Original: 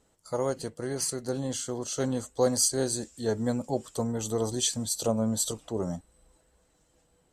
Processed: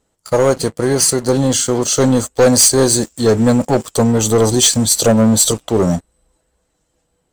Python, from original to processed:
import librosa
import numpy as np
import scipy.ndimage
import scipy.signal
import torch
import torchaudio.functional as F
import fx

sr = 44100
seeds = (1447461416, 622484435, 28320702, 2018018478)

y = fx.leveller(x, sr, passes=3)
y = F.gain(torch.from_numpy(y), 7.0).numpy()